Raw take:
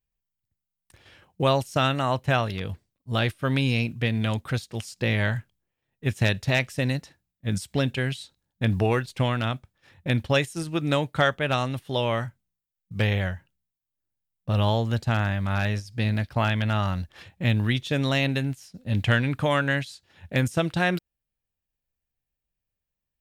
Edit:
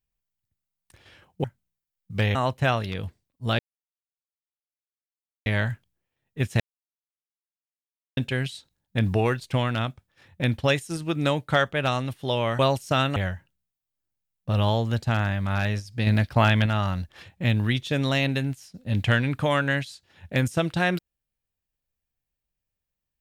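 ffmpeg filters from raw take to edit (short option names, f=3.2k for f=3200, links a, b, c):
-filter_complex "[0:a]asplit=11[a][b][c][d][e][f][g][h][i][j][k];[a]atrim=end=1.442[l];[b]atrim=start=12.248:end=13.162[m];[c]atrim=start=2.008:end=3.25,asetpts=PTS-STARTPTS,afade=t=out:st=1.238:d=0.004:c=hsin[n];[d]atrim=start=3.25:end=5.12,asetpts=PTS-STARTPTS,volume=0[o];[e]atrim=start=5.12:end=6.26,asetpts=PTS-STARTPTS,afade=t=in:d=0.004:c=hsin,afade=t=out:st=1.136:d=0.004:c=hsin[p];[f]atrim=start=6.26:end=7.83,asetpts=PTS-STARTPTS,volume=0[q];[g]atrim=start=7.83:end=12.252,asetpts=PTS-STARTPTS,afade=t=in:d=0.004:c=hsin[r];[h]atrim=start=1.438:end=2.012[s];[i]atrim=start=13.158:end=16.072[t];[j]atrim=start=16.068:end=16.662,asetpts=PTS-STARTPTS,volume=4.5dB[u];[k]atrim=start=16.658[v];[l][m]acrossfade=d=0.004:c1=hsin:c2=hsin[w];[n][o][p][q][r]concat=n=5:v=0:a=1[x];[w][x]acrossfade=d=0.004:c1=hsin:c2=hsin[y];[y][s]acrossfade=d=0.004:c1=hsin:c2=hsin[z];[z][t]acrossfade=d=0.004:c1=hsin:c2=hsin[aa];[aa][u]acrossfade=d=0.004:c1=hsin:c2=hsin[ab];[ab][v]acrossfade=d=0.004:c1=hsin:c2=hsin"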